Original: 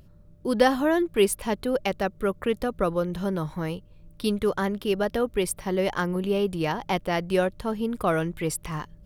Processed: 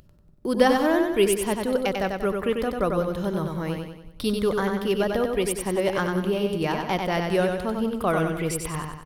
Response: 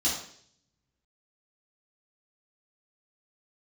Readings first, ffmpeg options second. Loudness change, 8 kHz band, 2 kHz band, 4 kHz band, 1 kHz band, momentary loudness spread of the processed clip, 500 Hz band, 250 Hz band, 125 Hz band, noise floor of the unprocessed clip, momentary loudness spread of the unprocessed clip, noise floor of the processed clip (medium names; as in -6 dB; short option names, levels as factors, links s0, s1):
+1.5 dB, +1.5 dB, +1.5 dB, +2.0 dB, +1.5 dB, 8 LU, +1.5 dB, +1.5 dB, +1.5 dB, -52 dBFS, 8 LU, -51 dBFS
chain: -filter_complex "[0:a]agate=range=0.0112:threshold=0.00631:ratio=16:detection=peak,acompressor=mode=upward:threshold=0.0355:ratio=2.5,asplit=2[s0][s1];[s1]aecho=0:1:94|188|282|376|470|564:0.596|0.286|0.137|0.0659|0.0316|0.0152[s2];[s0][s2]amix=inputs=2:normalize=0"